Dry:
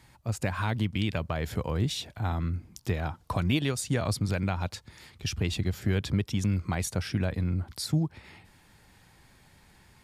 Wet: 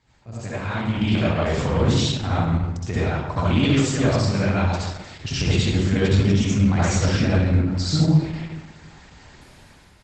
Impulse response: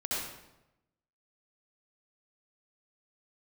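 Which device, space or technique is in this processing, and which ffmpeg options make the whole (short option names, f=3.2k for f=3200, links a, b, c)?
speakerphone in a meeting room: -filter_complex "[0:a]asettb=1/sr,asplit=3[a][b][c];[a]atrim=end=1.484[d];[b]atrim=start=1.48:end=2.46,asetpts=PTS-STARTPTS,afade=t=in:d=0.004:c=qsin,afade=t=out:st=0.976:d=0.004:c=qsin,highpass=57[e];[c]atrim=start=2.456[f];[d][e]acrossfade=d=0.004:c1=hsin:c2=qsin[g];[g][f]acrossfade=d=0.004:c1=qsin:c2=hsin[h];[1:a]atrim=start_sample=2205[i];[h][i]afir=irnorm=-1:irlink=0,asplit=2[j][k];[k]adelay=260,highpass=300,lowpass=3.4k,asoftclip=type=hard:threshold=-18.5dB,volume=-16dB[l];[j][l]amix=inputs=2:normalize=0,dynaudnorm=f=180:g=11:m=16.5dB,volume=-5dB" -ar 48000 -c:a libopus -b:a 12k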